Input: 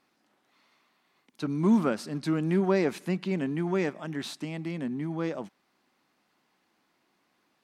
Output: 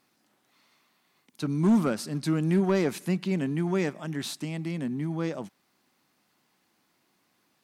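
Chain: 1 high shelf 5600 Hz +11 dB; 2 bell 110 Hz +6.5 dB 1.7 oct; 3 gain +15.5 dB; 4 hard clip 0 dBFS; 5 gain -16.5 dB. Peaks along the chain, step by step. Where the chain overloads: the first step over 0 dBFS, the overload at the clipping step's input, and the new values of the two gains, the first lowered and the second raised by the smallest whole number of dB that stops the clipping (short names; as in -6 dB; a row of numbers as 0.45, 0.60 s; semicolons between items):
-12.0, -11.5, +4.0, 0.0, -16.5 dBFS; step 3, 4.0 dB; step 3 +11.5 dB, step 5 -12.5 dB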